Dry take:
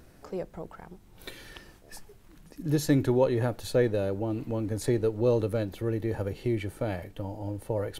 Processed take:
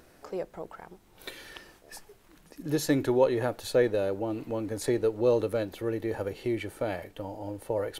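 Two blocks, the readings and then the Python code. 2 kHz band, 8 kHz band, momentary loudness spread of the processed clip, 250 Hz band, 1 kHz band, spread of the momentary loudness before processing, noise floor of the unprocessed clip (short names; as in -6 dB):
+2.0 dB, +1.0 dB, 20 LU, -1.5 dB, +2.0 dB, 21 LU, -55 dBFS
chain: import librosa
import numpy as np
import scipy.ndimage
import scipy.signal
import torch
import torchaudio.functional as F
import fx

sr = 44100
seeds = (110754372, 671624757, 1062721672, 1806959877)

y = fx.bass_treble(x, sr, bass_db=-10, treble_db=-1)
y = y * librosa.db_to_amplitude(2.0)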